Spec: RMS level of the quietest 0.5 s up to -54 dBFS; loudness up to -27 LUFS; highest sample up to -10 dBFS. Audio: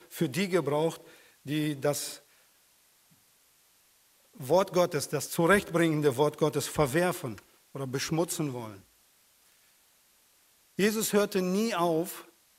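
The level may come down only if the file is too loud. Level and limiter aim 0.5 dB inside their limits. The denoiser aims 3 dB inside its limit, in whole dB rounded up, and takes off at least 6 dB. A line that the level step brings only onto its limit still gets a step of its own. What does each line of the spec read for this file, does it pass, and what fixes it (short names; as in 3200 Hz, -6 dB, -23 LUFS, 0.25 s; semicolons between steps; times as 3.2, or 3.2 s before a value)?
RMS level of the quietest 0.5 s -65 dBFS: OK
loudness -28.5 LUFS: OK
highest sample -9.0 dBFS: fail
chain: limiter -10.5 dBFS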